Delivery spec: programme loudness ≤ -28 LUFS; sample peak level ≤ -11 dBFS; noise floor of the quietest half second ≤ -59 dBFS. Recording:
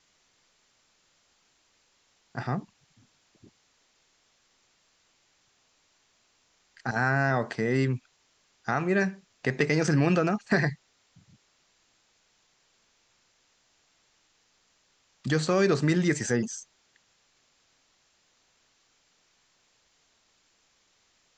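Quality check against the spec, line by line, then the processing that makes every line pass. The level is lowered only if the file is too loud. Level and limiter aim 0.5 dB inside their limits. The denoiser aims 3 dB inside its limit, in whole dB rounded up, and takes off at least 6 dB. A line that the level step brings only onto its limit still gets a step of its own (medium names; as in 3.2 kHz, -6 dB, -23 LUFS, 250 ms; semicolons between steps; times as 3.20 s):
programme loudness -27.0 LUFS: fail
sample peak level -8.0 dBFS: fail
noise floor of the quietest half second -68 dBFS: pass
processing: trim -1.5 dB; peak limiter -11.5 dBFS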